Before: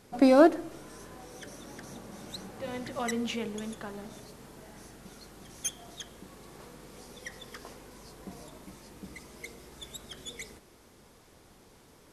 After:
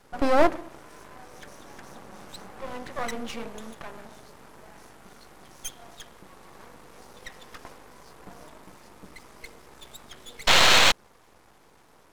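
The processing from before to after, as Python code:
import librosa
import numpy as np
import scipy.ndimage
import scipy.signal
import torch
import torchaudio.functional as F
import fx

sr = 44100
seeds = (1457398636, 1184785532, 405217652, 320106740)

y = fx.peak_eq(x, sr, hz=1000.0, db=9.5, octaves=1.9)
y = fx.spec_paint(y, sr, seeds[0], shape='noise', start_s=10.47, length_s=0.45, low_hz=470.0, high_hz=4500.0, level_db=-13.0)
y = np.maximum(y, 0.0)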